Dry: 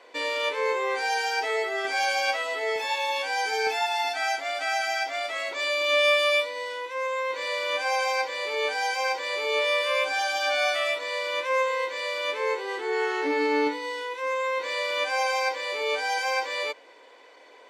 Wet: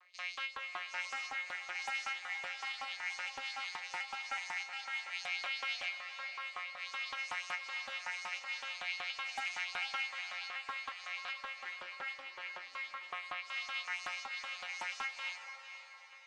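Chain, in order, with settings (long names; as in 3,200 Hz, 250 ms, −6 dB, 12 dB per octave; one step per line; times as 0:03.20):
vocoder with an arpeggio as carrier bare fifth, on E3, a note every 396 ms
brickwall limiter −21 dBFS, peak gain reduction 9.5 dB
auto-filter high-pass saw up 4.9 Hz 980–6,100 Hz
tuned comb filter 180 Hz, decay 0.18 s, harmonics all, mix 80%
feedback delay with all-pass diffusion 516 ms, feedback 45%, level −9 dB
wrong playback speed 44.1 kHz file played as 48 kHz
highs frequency-modulated by the lows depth 0.3 ms
level −1 dB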